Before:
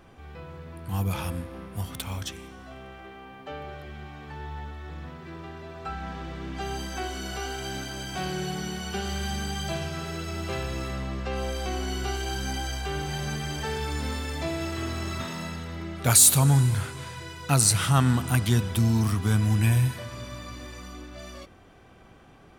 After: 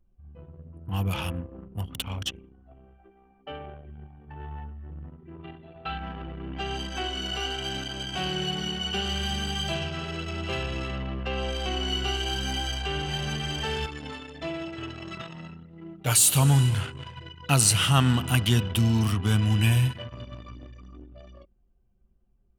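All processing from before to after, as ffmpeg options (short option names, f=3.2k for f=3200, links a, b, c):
-filter_complex "[0:a]asettb=1/sr,asplit=3[a][b][c];[a]atrim=end=5.404[d];[b]atrim=start=5.4:end=5.98,asetpts=PTS-STARTPTS,afade=t=in:d=0.004:c=qsin,afade=t=out:st=0.576:d=0.004:c=qsin,lowpass=12k,highshelf=f=5.1k:t=q:w=3:g=-10,asplit=2[e][f];[f]adelay=42,volume=-8dB[g];[e][g]amix=inputs=2:normalize=0,atrim=end_sample=25578[h];[c]atrim=start=5.976[i];[d][h]acrossfade=d=0.004:c1=hsin:c2=qsin[j];[j][i]acrossfade=d=0.004:c1=qsin:c2=hsin,asettb=1/sr,asplit=3[k][l][m];[k]atrim=end=13.864[n];[l]atrim=start=13.86:end=16.35,asetpts=PTS-STARTPTS,afade=t=in:d=0.004:c=qsin,afade=t=out:st=2.486:d=0.004:c=qsin,bandreject=f=50:t=h:w=6,bandreject=f=100:t=h:w=6,bandreject=f=150:t=h:w=6,bandreject=f=200:t=h:w=6,bandreject=f=250:t=h:w=6,bandreject=f=300:t=h:w=6,bandreject=f=350:t=h:w=6,flanger=delay=5.9:depth=1:regen=-25:speed=1.5:shape=triangular[o];[m]atrim=start=16.346[p];[n][o]acrossfade=d=0.004:c1=hsin:c2=qsin[q];[q][p]acrossfade=d=0.004:c1=qsin:c2=hsin,anlmdn=2.51,equalizer=f=2.9k:t=o:w=0.26:g=14"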